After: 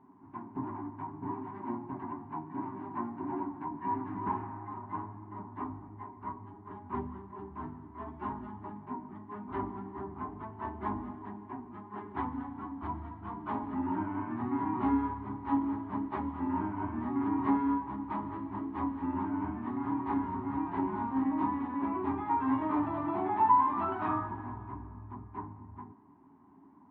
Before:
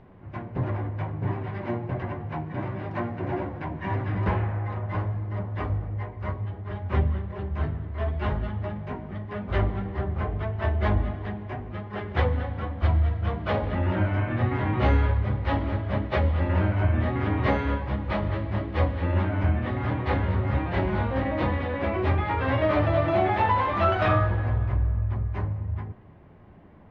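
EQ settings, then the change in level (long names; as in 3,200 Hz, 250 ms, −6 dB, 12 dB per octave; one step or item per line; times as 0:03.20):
pair of resonant band-passes 510 Hz, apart 1.8 octaves
parametric band 400 Hz +11 dB 0.2 octaves
+3.0 dB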